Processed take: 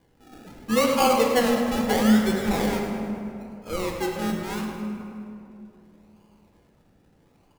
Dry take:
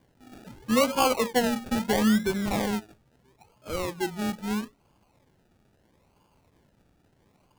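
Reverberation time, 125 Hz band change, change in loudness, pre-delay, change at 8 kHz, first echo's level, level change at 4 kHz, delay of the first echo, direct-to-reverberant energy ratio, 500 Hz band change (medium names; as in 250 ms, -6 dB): 2.8 s, +3.0 dB, +3.0 dB, 4 ms, +1.5 dB, -11.0 dB, +2.0 dB, 105 ms, 0.5 dB, +4.5 dB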